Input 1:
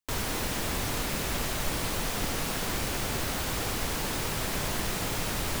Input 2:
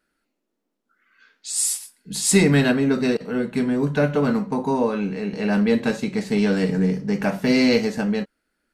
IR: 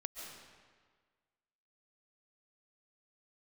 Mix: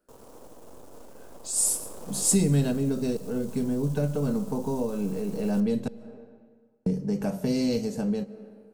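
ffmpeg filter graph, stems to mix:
-filter_complex "[0:a]equalizer=f=250:t=o:w=1:g=7,equalizer=f=500:t=o:w=1:g=8,equalizer=f=1k:t=o:w=1:g=8,equalizer=f=4k:t=o:w=1:g=4,equalizer=f=8k:t=o:w=1:g=4,aeval=exprs='max(val(0),0)':c=same,volume=-16dB,afade=t=in:st=1.35:d=0.63:silence=0.446684,asplit=2[a][b];[b]volume=-9.5dB[c];[1:a]volume=-1.5dB,asplit=3[d][e][f];[d]atrim=end=5.88,asetpts=PTS-STARTPTS,afade=t=out:st=5.876:d=0.004:c=hsin[g];[e]atrim=start=5.88:end=6.86,asetpts=PTS-STARTPTS,volume=0[h];[f]atrim=start=6.86,asetpts=PTS-STARTPTS,afade=t=in:d=0.004:c=hsin[i];[g][h][i]concat=n=3:v=0:a=1,asplit=2[j][k];[k]volume=-14dB[l];[2:a]atrim=start_sample=2205[m];[c][l]amix=inputs=2:normalize=0[n];[n][m]afir=irnorm=-1:irlink=0[o];[a][j][o]amix=inputs=3:normalize=0,equalizer=f=500:t=o:w=1:g=6,equalizer=f=2k:t=o:w=1:g=-11,equalizer=f=4k:t=o:w=1:g=-8,acrossover=split=180|3000[p][q][r];[q]acompressor=threshold=-33dB:ratio=3[s];[p][s][r]amix=inputs=3:normalize=0"

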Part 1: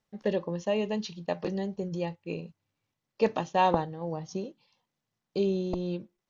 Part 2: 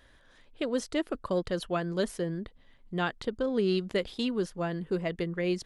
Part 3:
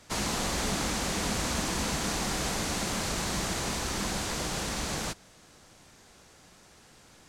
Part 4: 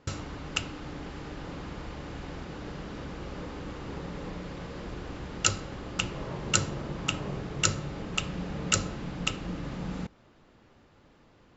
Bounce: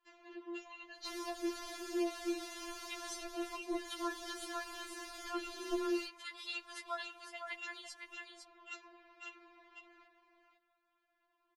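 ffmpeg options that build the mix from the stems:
-filter_complex "[0:a]dynaudnorm=f=350:g=5:m=11.5dB,volume=-15dB,asplit=2[a][b];[1:a]highpass=f=1k:w=0.5412,highpass=f=1k:w=1.3066,adelay=2300,volume=-1dB,asplit=2[c][d];[d]volume=-6.5dB[e];[2:a]equalizer=f=7.7k:w=7.4:g=-14,adelay=950,volume=-12.5dB[f];[3:a]acrossover=split=450 3700:gain=0.1 1 0.0891[g][h][i];[g][h][i]amix=inputs=3:normalize=0,volume=-14dB,asplit=2[j][k];[k]volume=-6dB[l];[b]apad=whole_len=350858[m];[c][m]sidechaincompress=threshold=-38dB:ratio=8:attack=16:release=128[n];[e][l]amix=inputs=2:normalize=0,aecho=0:1:506:1[o];[a][n][f][j][o]amix=inputs=5:normalize=0,acrossover=split=420[p][q];[q]acompressor=threshold=-36dB:ratio=5[r];[p][r]amix=inputs=2:normalize=0,afftfilt=real='re*4*eq(mod(b,16),0)':imag='im*4*eq(mod(b,16),0)':win_size=2048:overlap=0.75"

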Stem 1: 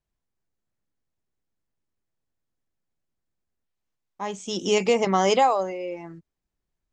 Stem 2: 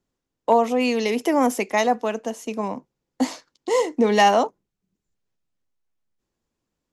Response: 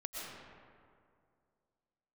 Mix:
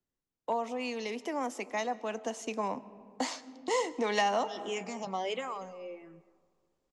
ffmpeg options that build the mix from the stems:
-filter_complex "[0:a]asplit=2[a][b];[b]afreqshift=-1.5[c];[a][c]amix=inputs=2:normalize=1,volume=-10.5dB,asplit=3[d][e][f];[e]volume=-21.5dB[g];[f]volume=-20.5dB[h];[1:a]lowpass=f=8.9k:w=0.5412,lowpass=f=8.9k:w=1.3066,volume=-3.5dB,afade=t=in:st=2.02:d=0.31:silence=0.354813,asplit=3[i][j][k];[j]volume=-18dB[l];[k]apad=whole_len=305236[m];[d][m]sidechaincompress=threshold=-28dB:ratio=8:attack=16:release=183[n];[2:a]atrim=start_sample=2205[o];[g][l]amix=inputs=2:normalize=0[p];[p][o]afir=irnorm=-1:irlink=0[q];[h]aecho=0:1:240:1[r];[n][i][q][r]amix=inputs=4:normalize=0,acrossover=split=270|640[s][t][u];[s]acompressor=threshold=-45dB:ratio=4[v];[t]acompressor=threshold=-39dB:ratio=4[w];[u]acompressor=threshold=-28dB:ratio=4[x];[v][w][x]amix=inputs=3:normalize=0"

